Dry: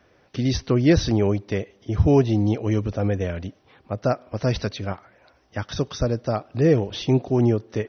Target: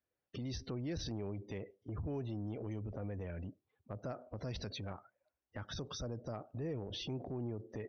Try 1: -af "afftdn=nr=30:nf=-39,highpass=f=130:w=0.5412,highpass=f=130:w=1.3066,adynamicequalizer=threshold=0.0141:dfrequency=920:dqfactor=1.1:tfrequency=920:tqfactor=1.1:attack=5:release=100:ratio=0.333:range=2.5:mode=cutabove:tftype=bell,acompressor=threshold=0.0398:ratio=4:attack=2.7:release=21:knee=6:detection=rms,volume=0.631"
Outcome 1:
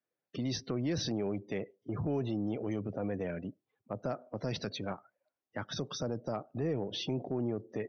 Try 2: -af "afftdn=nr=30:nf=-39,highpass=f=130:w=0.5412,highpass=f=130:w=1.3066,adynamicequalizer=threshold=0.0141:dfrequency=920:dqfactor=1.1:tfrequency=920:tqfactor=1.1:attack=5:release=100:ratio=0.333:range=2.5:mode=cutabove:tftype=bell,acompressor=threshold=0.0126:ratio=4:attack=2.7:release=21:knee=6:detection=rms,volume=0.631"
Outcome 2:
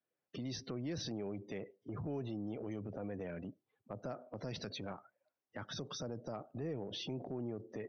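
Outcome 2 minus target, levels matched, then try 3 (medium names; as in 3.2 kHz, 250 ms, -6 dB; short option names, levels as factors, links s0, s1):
125 Hz band -3.5 dB
-af "afftdn=nr=30:nf=-39,adynamicequalizer=threshold=0.0141:dfrequency=920:dqfactor=1.1:tfrequency=920:tqfactor=1.1:attack=5:release=100:ratio=0.333:range=2.5:mode=cutabove:tftype=bell,acompressor=threshold=0.0126:ratio=4:attack=2.7:release=21:knee=6:detection=rms,volume=0.631"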